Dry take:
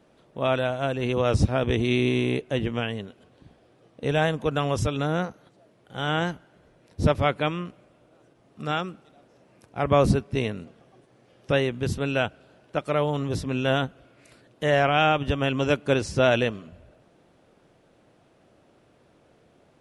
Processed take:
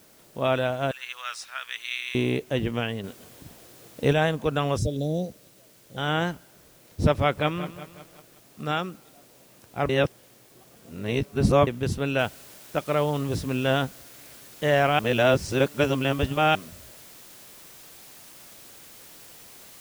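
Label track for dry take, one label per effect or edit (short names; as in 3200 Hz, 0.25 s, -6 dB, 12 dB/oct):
0.910000	2.150000	Chebyshev high-pass 1400 Hz, order 3
3.040000	4.130000	gain +5 dB
4.780000	5.970000	elliptic band-stop 600–4000 Hz, stop band 60 dB
7.190000	8.730000	lo-fi delay 0.183 s, feedback 55%, word length 8-bit, level -13 dB
9.890000	11.670000	reverse
12.190000	12.190000	noise floor step -57 dB -48 dB
14.990000	16.550000	reverse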